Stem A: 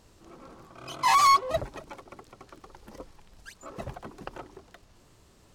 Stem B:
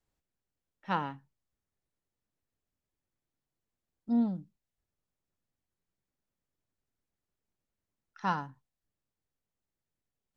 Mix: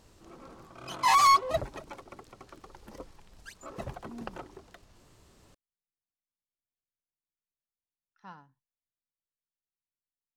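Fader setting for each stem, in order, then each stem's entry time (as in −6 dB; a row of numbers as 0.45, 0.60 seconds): −1.0, −17.5 decibels; 0.00, 0.00 seconds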